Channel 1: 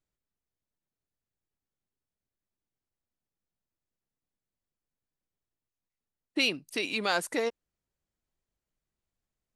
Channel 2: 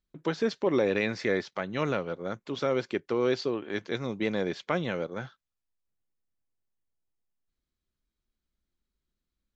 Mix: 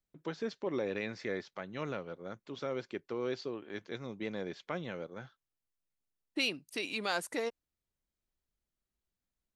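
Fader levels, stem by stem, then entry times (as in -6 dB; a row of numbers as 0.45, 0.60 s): -5.5, -9.5 dB; 0.00, 0.00 s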